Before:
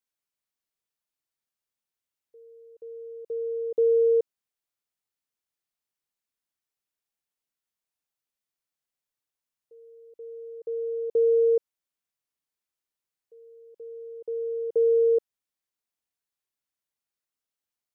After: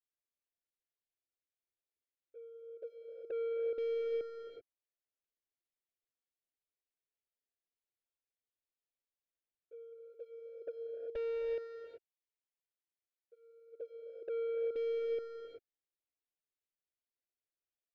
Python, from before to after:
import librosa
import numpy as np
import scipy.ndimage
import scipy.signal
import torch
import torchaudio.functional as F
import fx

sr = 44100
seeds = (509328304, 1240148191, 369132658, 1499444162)

y = np.minimum(x, 2.0 * 10.0 ** (-23.0 / 20.0) - x)
y = fx.low_shelf(y, sr, hz=430.0, db=-8.5, at=(9.92, 13.72), fade=0.02)
y = fx.leveller(y, sr, passes=1)
y = fx.env_flanger(y, sr, rest_ms=11.6, full_db=-25.0)
y = 10.0 ** (-35.0 / 20.0) * np.tanh(y / 10.0 ** (-35.0 / 20.0))
y = fx.air_absorb(y, sr, metres=330.0)
y = fx.fixed_phaser(y, sr, hz=430.0, stages=4)
y = fx.rev_gated(y, sr, seeds[0], gate_ms=410, shape='rising', drr_db=3.0)